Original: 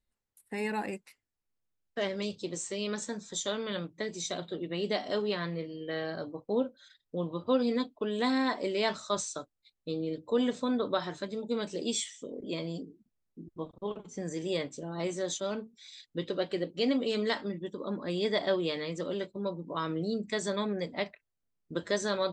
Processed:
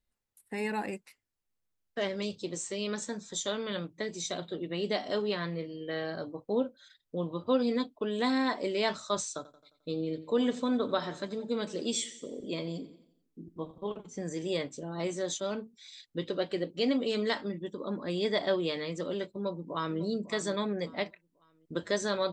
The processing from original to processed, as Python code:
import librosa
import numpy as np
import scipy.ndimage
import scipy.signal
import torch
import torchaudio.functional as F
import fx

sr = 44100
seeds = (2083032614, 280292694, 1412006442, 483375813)

y = fx.echo_feedback(x, sr, ms=88, feedback_pct=53, wet_db=-17.0, at=(9.36, 13.88))
y = fx.echo_throw(y, sr, start_s=19.31, length_s=0.69, ms=550, feedback_pct=35, wet_db=-15.0)